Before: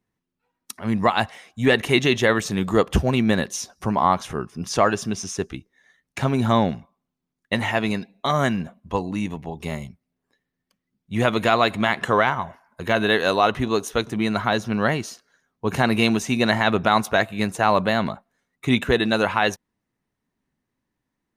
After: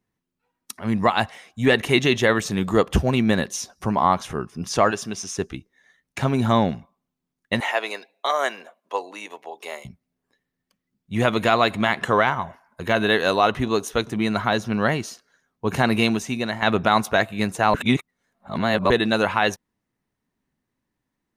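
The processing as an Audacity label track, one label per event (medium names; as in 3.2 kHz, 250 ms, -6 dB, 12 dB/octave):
4.910000	5.370000	bass shelf 280 Hz -8.5 dB
7.600000	9.850000	high-pass 440 Hz 24 dB/octave
15.960000	16.620000	fade out, to -10.5 dB
17.740000	18.900000	reverse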